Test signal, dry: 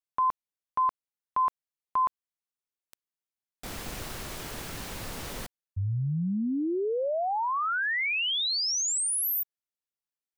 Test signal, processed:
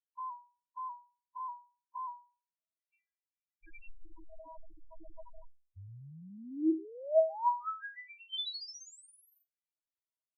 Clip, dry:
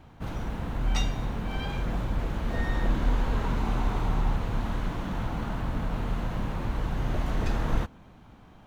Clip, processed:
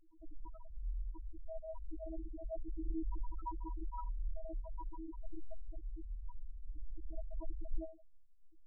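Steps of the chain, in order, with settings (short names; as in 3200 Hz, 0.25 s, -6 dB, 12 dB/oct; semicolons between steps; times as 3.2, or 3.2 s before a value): metallic resonator 320 Hz, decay 0.37 s, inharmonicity 0.002; LFO low-pass square 0.36 Hz 810–2500 Hz; loudest bins only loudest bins 2; gain +10 dB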